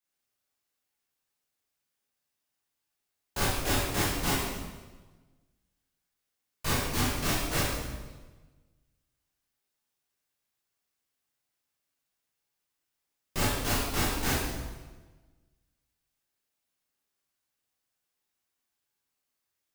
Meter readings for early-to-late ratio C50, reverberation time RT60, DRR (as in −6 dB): −1.0 dB, 1.3 s, −9.5 dB